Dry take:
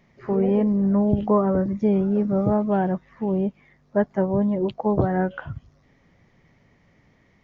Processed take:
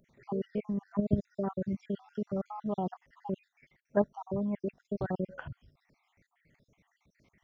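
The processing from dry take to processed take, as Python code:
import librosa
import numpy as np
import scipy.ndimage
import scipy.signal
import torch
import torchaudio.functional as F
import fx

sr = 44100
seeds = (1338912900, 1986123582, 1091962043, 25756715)

y = fx.spec_dropout(x, sr, seeds[0], share_pct=65)
y = fx.high_shelf(y, sr, hz=2200.0, db=7.5)
y = fx.level_steps(y, sr, step_db=9)
y = y * 10.0 ** (-4.0 / 20.0)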